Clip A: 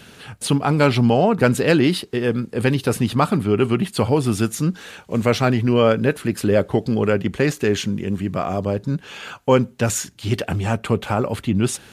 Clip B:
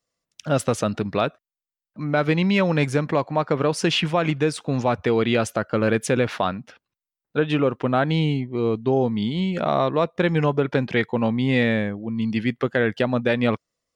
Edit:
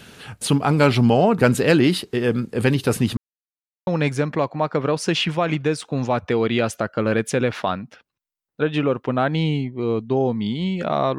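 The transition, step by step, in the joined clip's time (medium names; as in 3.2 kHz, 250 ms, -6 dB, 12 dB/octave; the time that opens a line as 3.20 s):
clip A
3.17–3.87 s: mute
3.87 s: go over to clip B from 2.63 s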